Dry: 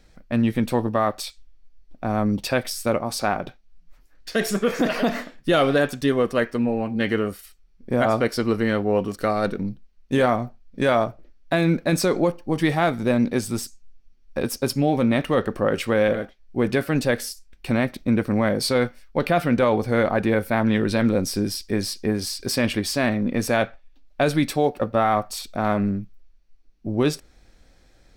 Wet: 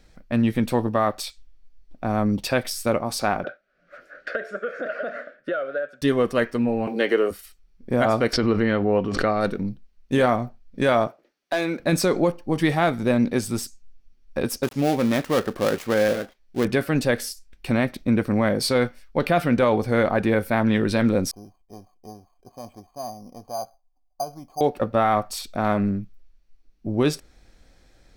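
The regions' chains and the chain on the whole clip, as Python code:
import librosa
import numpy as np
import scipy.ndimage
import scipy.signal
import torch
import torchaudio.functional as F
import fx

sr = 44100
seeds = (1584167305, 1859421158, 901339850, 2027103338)

y = fx.chain(x, sr, fx.double_bandpass(hz=920.0, octaves=1.3),
    fx.band_squash(depth_pct=100), at=(3.44, 6.02))
y = fx.chain(y, sr, fx.highpass_res(hz=420.0, q=1.8),
    fx.band_squash(depth_pct=40), at=(6.87, 7.31))
y = fx.chain(y, sr, fx.lowpass(hz=3600.0, slope=12),
    fx.pre_swell(db_per_s=50.0), at=(8.33, 9.41))
y = fx.chain(y, sr, fx.highpass(hz=380.0, slope=12),
    fx.clip_hard(threshold_db=-15.5), at=(11.07, 11.8))
y = fx.chain(y, sr, fx.dead_time(dead_ms=0.17),
    fx.low_shelf(hz=120.0, db=-8.0), at=(14.63, 16.65))
y = fx.chain(y, sr, fx.formant_cascade(vowel='a'),
    fx.low_shelf(hz=260.0, db=11.0),
    fx.resample_bad(factor=8, down='filtered', up='hold'), at=(21.31, 24.61))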